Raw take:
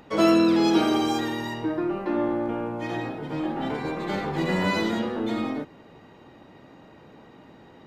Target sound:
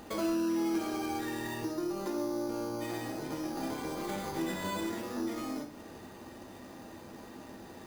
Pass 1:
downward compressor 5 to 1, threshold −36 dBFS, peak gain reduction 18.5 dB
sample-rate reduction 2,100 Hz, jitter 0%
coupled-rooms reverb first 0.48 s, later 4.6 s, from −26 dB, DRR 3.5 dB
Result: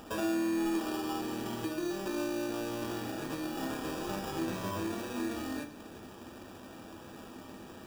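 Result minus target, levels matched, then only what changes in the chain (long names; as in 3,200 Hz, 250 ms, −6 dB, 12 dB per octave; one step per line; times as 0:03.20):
sample-rate reduction: distortion +6 dB
change: sample-rate reduction 5,500 Hz, jitter 0%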